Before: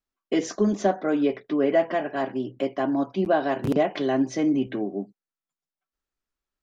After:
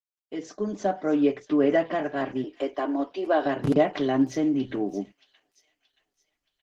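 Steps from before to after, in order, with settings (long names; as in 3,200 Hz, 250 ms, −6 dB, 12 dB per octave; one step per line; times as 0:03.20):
fade in at the beginning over 1.40 s
0:02.44–0:03.46: Butterworth high-pass 300 Hz 36 dB per octave
comb filter 6.7 ms, depth 34%
0:04.29–0:04.86: downward compressor 16 to 1, threshold −20 dBFS, peak gain reduction 5 dB
delay with a high-pass on its return 625 ms, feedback 41%, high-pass 3,500 Hz, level −12 dB
Opus 16 kbit/s 48,000 Hz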